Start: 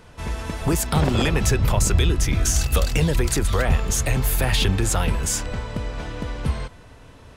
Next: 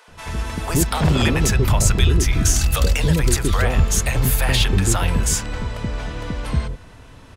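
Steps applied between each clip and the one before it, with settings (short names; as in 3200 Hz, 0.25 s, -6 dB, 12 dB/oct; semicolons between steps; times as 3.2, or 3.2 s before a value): bands offset in time highs, lows 80 ms, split 540 Hz; gain +3 dB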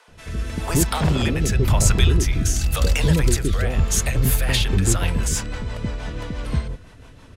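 rotary speaker horn 0.9 Hz, later 6 Hz, at 3.74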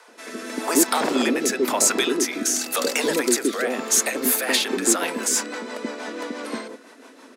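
Chebyshev high-pass 240 Hz, order 5; bell 3000 Hz -6 dB 0.55 oct; in parallel at -8 dB: soft clip -17 dBFS, distortion -16 dB; on the sum: gain +2 dB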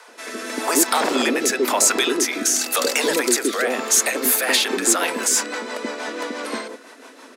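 HPF 390 Hz 6 dB/oct; in parallel at -2 dB: limiter -17 dBFS, peak gain reduction 11 dB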